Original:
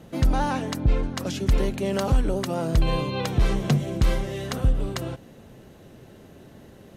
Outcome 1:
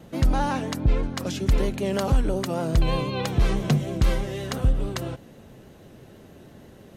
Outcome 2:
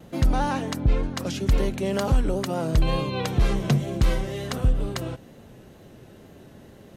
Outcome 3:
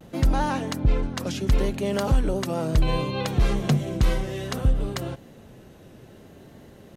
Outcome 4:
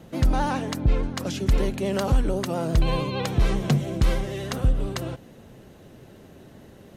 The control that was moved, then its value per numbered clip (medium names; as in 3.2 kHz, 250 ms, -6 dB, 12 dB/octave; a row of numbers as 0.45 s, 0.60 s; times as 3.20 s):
vibrato, rate: 6.2 Hz, 2.1 Hz, 0.65 Hz, 13 Hz